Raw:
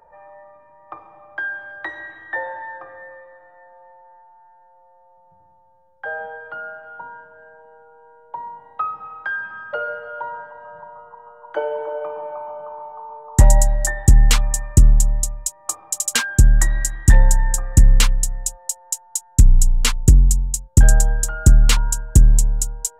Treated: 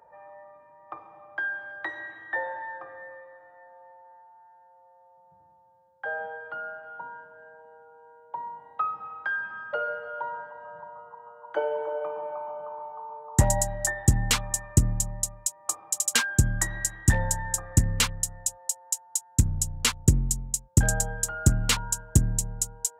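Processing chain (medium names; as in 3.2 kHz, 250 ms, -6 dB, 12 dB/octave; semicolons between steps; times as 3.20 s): high-pass 89 Hz 12 dB/octave; trim -4 dB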